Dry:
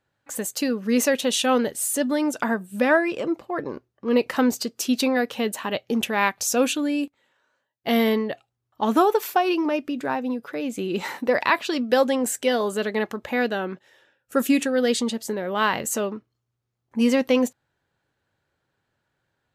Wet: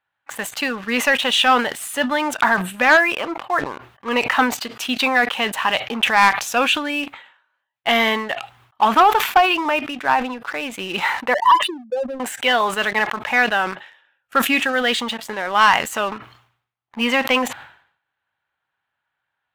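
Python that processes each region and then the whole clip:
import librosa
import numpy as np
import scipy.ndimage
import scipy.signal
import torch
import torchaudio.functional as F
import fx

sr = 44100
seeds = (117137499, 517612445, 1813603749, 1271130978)

y = fx.chain(x, sr, fx.spec_expand(power=3.7),
    fx.fixed_phaser(hz=680.0, stages=6), at=(11.34, 12.2))
y = fx.band_shelf(y, sr, hz=1600.0, db=16.0, octaves=2.7)
y = fx.leveller(y, sr, passes=2)
y = fx.sustainer(y, sr, db_per_s=100.0)
y = y * librosa.db_to_amplitude(-11.5)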